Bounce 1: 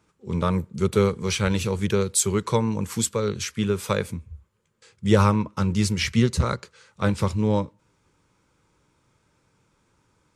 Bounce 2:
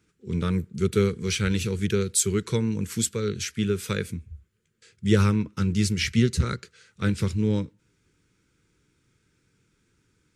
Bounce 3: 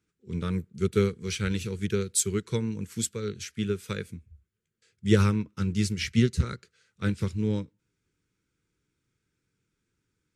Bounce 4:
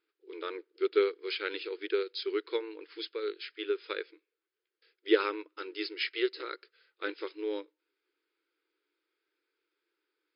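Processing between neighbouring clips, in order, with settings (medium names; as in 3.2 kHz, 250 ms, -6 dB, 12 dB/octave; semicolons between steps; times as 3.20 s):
high-order bell 790 Hz -14 dB 1.3 oct; trim -1 dB
upward expansion 1.5:1, over -37 dBFS
brick-wall FIR band-pass 300–5200 Hz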